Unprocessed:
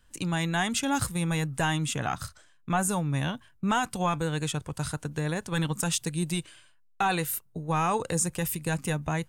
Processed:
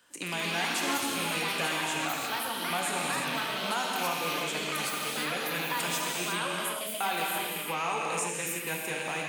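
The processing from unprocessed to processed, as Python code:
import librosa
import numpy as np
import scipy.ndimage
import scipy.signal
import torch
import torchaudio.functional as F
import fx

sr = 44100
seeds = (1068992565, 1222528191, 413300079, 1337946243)

y = fx.rattle_buzz(x, sr, strikes_db=-35.0, level_db=-22.0)
y = scipy.signal.sosfilt(scipy.signal.butter(2, 330.0, 'highpass', fs=sr, output='sos'), y)
y = fx.echo_pitch(y, sr, ms=153, semitones=4, count=2, db_per_echo=-3.0)
y = fx.rev_gated(y, sr, seeds[0], gate_ms=380, shape='flat', drr_db=-1.5)
y = fx.band_squash(y, sr, depth_pct=40)
y = F.gain(torch.from_numpy(y), -6.5).numpy()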